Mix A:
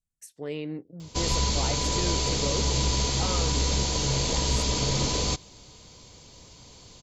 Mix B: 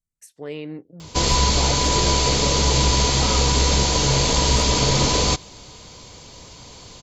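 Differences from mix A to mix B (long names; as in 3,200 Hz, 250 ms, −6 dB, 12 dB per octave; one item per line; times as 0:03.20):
background +6.5 dB
master: add parametric band 1,200 Hz +4 dB 2.6 octaves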